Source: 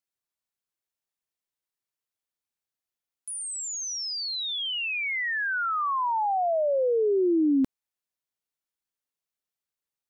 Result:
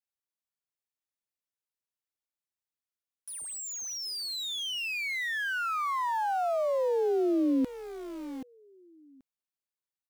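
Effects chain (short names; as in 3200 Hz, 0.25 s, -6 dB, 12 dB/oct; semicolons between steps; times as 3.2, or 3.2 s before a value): feedback echo 0.781 s, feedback 18%, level -12 dB; in parallel at -5.5 dB: sample gate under -32 dBFS; on the sum: gain -7.5 dB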